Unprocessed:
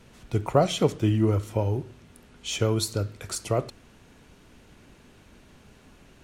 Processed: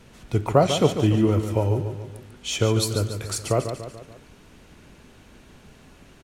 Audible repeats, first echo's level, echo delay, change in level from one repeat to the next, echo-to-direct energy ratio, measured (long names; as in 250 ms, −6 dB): 4, −9.0 dB, 144 ms, −6.0 dB, −7.5 dB